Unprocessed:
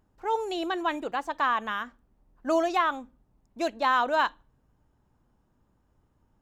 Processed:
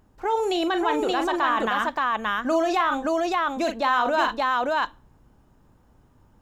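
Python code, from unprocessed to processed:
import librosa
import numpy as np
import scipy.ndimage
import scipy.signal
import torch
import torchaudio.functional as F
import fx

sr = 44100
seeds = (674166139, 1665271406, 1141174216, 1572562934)

p1 = fx.echo_multitap(x, sr, ms=(40, 44, 575), db=(-11.0, -17.0, -3.0))
p2 = fx.over_compress(p1, sr, threshold_db=-32.0, ratio=-1.0)
y = p1 + (p2 * 10.0 ** (0.0 / 20.0))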